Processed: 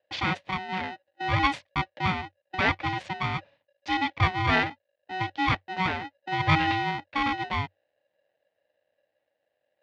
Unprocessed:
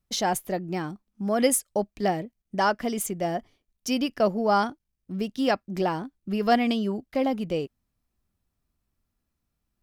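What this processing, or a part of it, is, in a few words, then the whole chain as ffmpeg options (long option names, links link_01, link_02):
ring modulator pedal into a guitar cabinet: -af "aeval=exprs='val(0)*sgn(sin(2*PI*560*n/s))':channel_layout=same,highpass=89,equalizer=frequency=94:width_type=q:width=4:gain=8,equalizer=frequency=220:width_type=q:width=4:gain=-5,equalizer=frequency=380:width_type=q:width=4:gain=-9,equalizer=frequency=580:width_type=q:width=4:gain=4,equalizer=frequency=1300:width_type=q:width=4:gain=-7,equalizer=frequency=2000:width_type=q:width=4:gain=5,lowpass=frequency=3700:width=0.5412,lowpass=frequency=3700:width=1.3066"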